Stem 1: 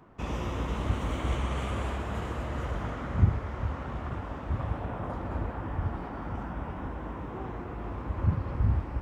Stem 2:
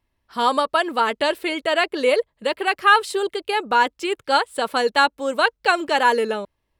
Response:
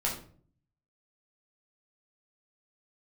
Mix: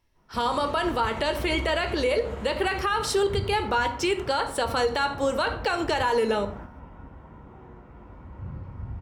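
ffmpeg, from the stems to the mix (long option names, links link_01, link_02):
-filter_complex "[0:a]bandreject=frequency=1200:width=26,adelay=150,volume=-6.5dB,asplit=2[link_01][link_02];[link_02]volume=-10.5dB[link_03];[1:a]equalizer=frequency=5700:width_type=o:width=0.28:gain=8.5,acompressor=threshold=-17dB:ratio=6,volume=-0.5dB,asplit=3[link_04][link_05][link_06];[link_05]volume=-10dB[link_07];[link_06]apad=whole_len=404290[link_08];[link_01][link_08]sidechaingate=range=-33dB:threshold=-57dB:ratio=16:detection=peak[link_09];[2:a]atrim=start_sample=2205[link_10];[link_03][link_07]amix=inputs=2:normalize=0[link_11];[link_11][link_10]afir=irnorm=-1:irlink=0[link_12];[link_09][link_04][link_12]amix=inputs=3:normalize=0,alimiter=limit=-15.5dB:level=0:latency=1:release=81"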